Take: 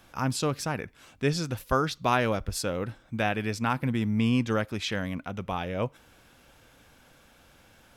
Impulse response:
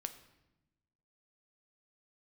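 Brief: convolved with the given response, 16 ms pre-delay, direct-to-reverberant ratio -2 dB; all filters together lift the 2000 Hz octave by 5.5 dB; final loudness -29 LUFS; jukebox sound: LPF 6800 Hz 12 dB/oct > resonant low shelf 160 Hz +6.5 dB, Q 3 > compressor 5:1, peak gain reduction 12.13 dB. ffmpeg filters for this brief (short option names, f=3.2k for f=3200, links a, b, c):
-filter_complex "[0:a]equalizer=f=2k:t=o:g=7.5,asplit=2[a][b];[1:a]atrim=start_sample=2205,adelay=16[c];[b][c]afir=irnorm=-1:irlink=0,volume=4dB[d];[a][d]amix=inputs=2:normalize=0,lowpass=6.8k,lowshelf=f=160:t=q:w=3:g=6.5,acompressor=threshold=-21dB:ratio=5,volume=-3dB"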